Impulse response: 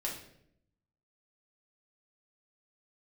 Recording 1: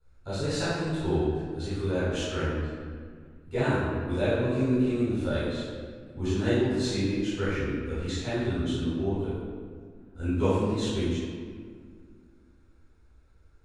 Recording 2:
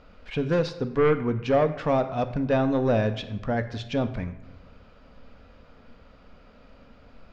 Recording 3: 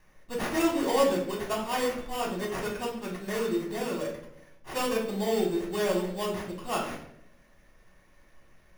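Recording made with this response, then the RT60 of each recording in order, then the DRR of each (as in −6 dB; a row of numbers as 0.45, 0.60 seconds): 3; 1.9, 1.1, 0.70 seconds; −14.5, 9.0, −3.5 decibels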